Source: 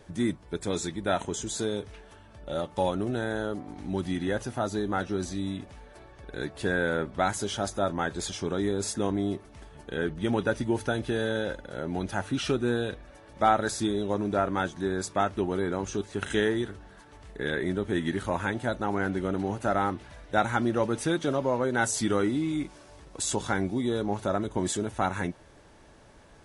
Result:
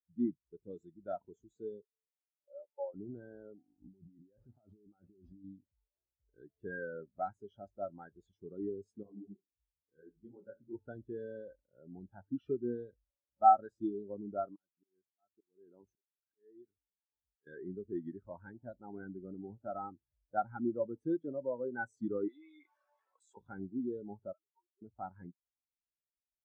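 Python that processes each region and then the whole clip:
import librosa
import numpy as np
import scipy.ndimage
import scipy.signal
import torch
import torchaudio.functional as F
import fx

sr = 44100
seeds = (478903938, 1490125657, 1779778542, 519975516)

y = fx.chain(x, sr, fx.steep_highpass(hz=350.0, slope=36),
    fx.spacing_loss(db_at_10k=35), at=(1.82, 2.94))
y = fx.chain(y, sr, fx.over_compress(threshold_db=-36.0, ratio=-1.0),
    fx.resample_linear(factor=4), at=(3.82, 5.44))
y = fx.chain(y, sr, fx.comb_fb(f0_hz=68.0, decay_s=0.19, harmonics='all', damping=0.0, mix_pct=40),
    fx.room_flutter(wall_m=11.2, rt60_s=0.41),
    fx.detune_double(cents=59), at=(9.03, 10.75))
y = fx.chain(y, sr, fx.low_shelf(hz=120.0, db=-6.5),
    fx.auto_swell(attack_ms=534.0), at=(14.45, 17.47))
y = fx.chain(y, sr, fx.highpass(hz=1000.0, slope=12),
    fx.env_flatten(amount_pct=70), at=(22.28, 23.37))
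y = fx.chain(y, sr, fx.sine_speech(),
    fx.double_bandpass(hz=1500.0, octaves=0.78), at=(24.33, 24.82))
y = fx.high_shelf(y, sr, hz=3600.0, db=-5.0)
y = fx.spectral_expand(y, sr, expansion=2.5)
y = y * librosa.db_to_amplitude(-2.0)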